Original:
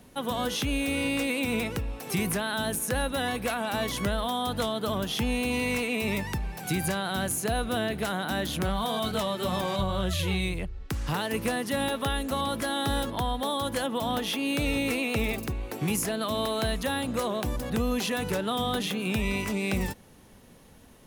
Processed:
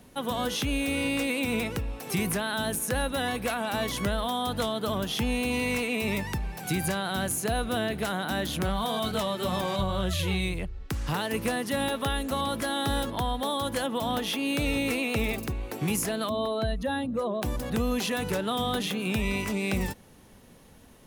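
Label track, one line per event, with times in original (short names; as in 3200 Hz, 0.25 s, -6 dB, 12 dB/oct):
16.290000	17.420000	spectral contrast raised exponent 1.6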